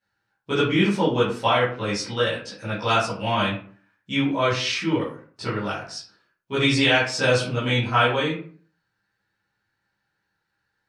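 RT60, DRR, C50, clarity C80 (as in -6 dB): 0.50 s, -11.5 dB, 4.5 dB, 9.5 dB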